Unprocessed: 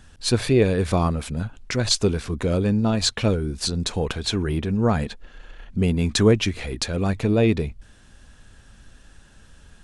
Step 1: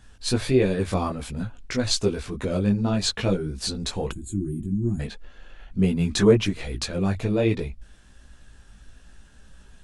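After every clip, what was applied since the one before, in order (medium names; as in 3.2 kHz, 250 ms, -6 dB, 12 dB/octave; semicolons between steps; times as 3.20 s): chorus voices 6, 1.3 Hz, delay 18 ms, depth 3 ms; time-frequency box 4.12–5.00 s, 380–6600 Hz -28 dB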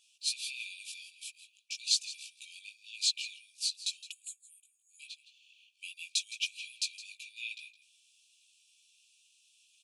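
brick-wall FIR high-pass 2.3 kHz; delay 164 ms -15.5 dB; trim -3 dB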